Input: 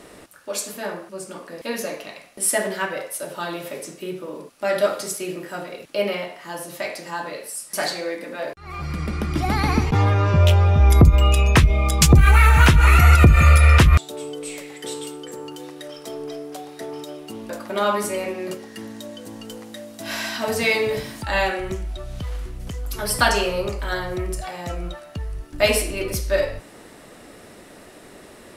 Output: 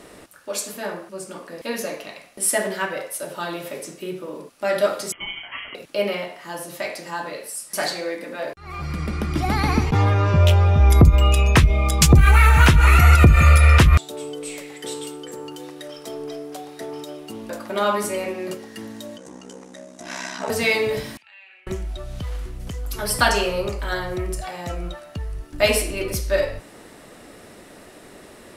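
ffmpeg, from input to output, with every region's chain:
-filter_complex "[0:a]asettb=1/sr,asplit=3[a][b][c];[a]atrim=end=5.124[d];[b]atrim=start=5.12:end=5.75,asetpts=PTS-STARTPTS,afade=t=in:d=0.004:c=qsin,afade=t=out:st=0.626:d=0.004:c=qsin,aemphasis=mode=production:type=75kf,lowpass=f=2.6k:t=q:w=0.5098,lowpass=f=2.6k:t=q:w=0.6013,lowpass=f=2.6k:t=q:w=0.9,lowpass=f=2.6k:t=q:w=2.563,afreqshift=-3000,aeval=exprs='val(0)*sin(2*PI*410*n/s)':c=same[e];[c]atrim=start=5.746[f];[d][e]acrossfade=d=0.004:c1=hsin:c2=qsin[g];[g][f]acrossfade=d=0.004:c1=qsin:c2=hsin,asettb=1/sr,asplit=3[h][i][j];[h]atrim=end=19.174[k];[i]atrim=start=19.17:end=20.5,asetpts=PTS-STARTPTS,afade=t=in:d=0.004:c=qsin,afade=t=out:st=1.326:d=0.004:c=qsin,highpass=180,equalizer=f=970:t=q:w=4:g=3,equalizer=f=3k:t=q:w=4:g=-6,equalizer=f=4.4k:t=q:w=4:g=-7,equalizer=f=6.3k:t=q:w=4:g=6,lowpass=f=9.2k:w=0.5412,lowpass=f=9.2k:w=1.3066,aeval=exprs='val(0)*sin(2*PI*33*n/s)':c=same[l];[j]atrim=start=20.496[m];[k][l]acrossfade=d=0.004:c1=hsin:c2=qsin[n];[n][m]acrossfade=d=0.004:c1=qsin:c2=hsin,asettb=1/sr,asplit=3[o][p][q];[o]atrim=end=21.174[r];[p]atrim=start=21.17:end=21.67,asetpts=PTS-STARTPTS,afade=t=in:d=0.004:c=qsin,afade=t=out:st=0.496:d=0.004:c=qsin,acompressor=threshold=-30dB:ratio=10:attack=3.2:release=140:knee=1:detection=peak,bandpass=f=2.5k:t=q:w=7[s];[q]atrim=start=21.666[t];[r][s]acrossfade=d=0.004:c1=hsin:c2=qsin[u];[u][t]acrossfade=d=0.004:c1=qsin:c2=hsin"

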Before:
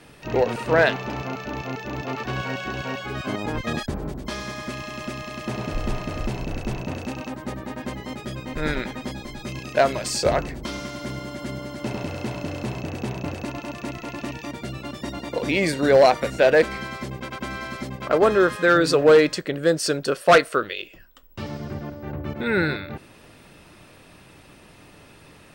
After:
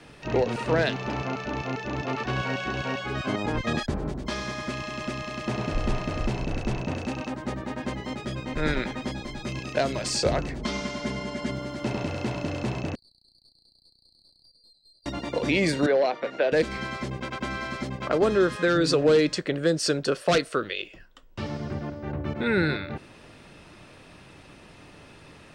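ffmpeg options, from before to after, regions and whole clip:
-filter_complex "[0:a]asettb=1/sr,asplit=3[a][b][c];[a]atrim=end=10.594[d];[b]atrim=start=10.59:end=11.51,asetpts=PTS-STARTPTS,afade=t=in:d=0.004:c=qsin,afade=t=out:st=0.916:d=0.004:c=qsin,lowpass=10k,aecho=1:1:4.7:0.69,atrim=end_sample=40572[e];[c]atrim=start=11.506[f];[d][e]acrossfade=d=0.004:c1=hsin:c2=qsin[g];[g][f]acrossfade=d=0.004:c1=qsin:c2=hsin,asettb=1/sr,asplit=3[h][i][j];[h]atrim=end=12.954[k];[i]atrim=start=12.95:end=15.06,asetpts=PTS-STARTPTS,afade=t=in:d=0.004:c=qsin,afade=t=out:st=2.106:d=0.004:c=qsin,asuperpass=centerf=4400:order=20:qfactor=5.7,aeval=exprs='(tanh(447*val(0)+0.55)-tanh(0.55))/447':c=same[l];[j]atrim=start=15.056[m];[k][l]acrossfade=d=0.004:c1=hsin:c2=qsin[n];[n][m]acrossfade=d=0.004:c1=qsin:c2=hsin,asettb=1/sr,asplit=3[o][p][q];[o]atrim=end=15.864[r];[p]atrim=start=15.86:end=16.52,asetpts=PTS-STARTPTS,afade=t=in:d=0.004:c=qsin,afade=t=out:st=0.656:d=0.004:c=qsin,highpass=410,lowpass=4.3k,aemphasis=mode=reproduction:type=75fm[s];[q]atrim=start=16.516[t];[r][s]acrossfade=d=0.004:c1=hsin:c2=qsin[u];[u][t]acrossfade=d=0.004:c1=qsin:c2=hsin,lowpass=7.8k,acrossover=split=380|3000[v][w][x];[w]acompressor=threshold=-25dB:ratio=6[y];[v][y][x]amix=inputs=3:normalize=0"

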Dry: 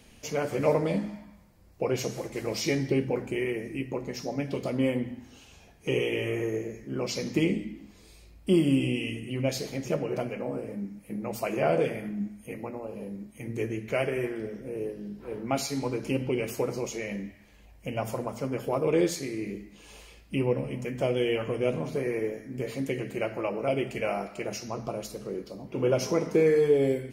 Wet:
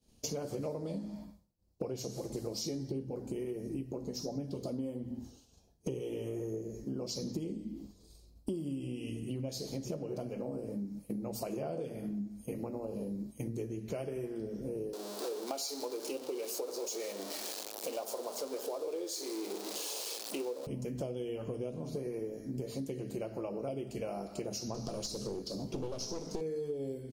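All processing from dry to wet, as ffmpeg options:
-filter_complex "[0:a]asettb=1/sr,asplit=3[a][b][c];[a]atrim=end=2.304[d];[b]atrim=start=2.3:end=8.66,asetpts=PTS-STARTPTS,afade=t=in:d=0.004:c=qsin,afade=t=out:st=6.356:d=0.004:c=qsin,equalizer=f=2.3k:t=o:w=1:g=-5.5,aphaser=in_gain=1:out_gain=1:delay=4.4:decay=0.23:speed=1.4:type=sinusoidal[e];[c]atrim=start=8.656[f];[d][e]acrossfade=d=0.004:c1=hsin:c2=qsin[g];[g][f]acrossfade=d=0.004:c1=qsin:c2=hsin,asettb=1/sr,asplit=3[h][i][j];[h]atrim=end=14.934[k];[i]atrim=start=14.93:end=20.67,asetpts=PTS-STARTPTS,afade=t=in:d=0.004:c=qsin,afade=t=out:st=5.736:d=0.004:c=qsin,aeval=exprs='val(0)+0.5*0.0237*sgn(val(0))':c=same,highpass=f=390:w=0.5412,highpass=f=390:w=1.3066[l];[j]atrim=start=20.666[m];[k][l]acrossfade=d=0.004:c1=hsin:c2=qsin[n];[n][m]acrossfade=d=0.004:c1=qsin:c2=hsin,asettb=1/sr,asplit=3[o][p][q];[o]atrim=end=24.744[r];[p]atrim=start=24.74:end=26.41,asetpts=PTS-STARTPTS,afade=t=in:d=0.004:c=qsin,afade=t=out:st=1.666:d=0.004:c=qsin,equalizer=f=5.6k:w=0.58:g=9.5,aeval=exprs='clip(val(0),-1,0.0178)':c=same,acrossover=split=7000[s][t];[t]acompressor=threshold=-52dB:ratio=4:attack=1:release=60[u];[s][u]amix=inputs=2:normalize=0[v];[q]atrim=start=26.406[w];[r][v]acrossfade=d=0.004:c1=hsin:c2=qsin[x];[x][w]acrossfade=d=0.004:c1=qsin:c2=hsin,agate=range=-33dB:threshold=-42dB:ratio=3:detection=peak,firequalizer=gain_entry='entry(300,0);entry(2000,-16);entry(4200,2);entry(7500,0)':delay=0.05:min_phase=1,acompressor=threshold=-42dB:ratio=12,volume=7dB"

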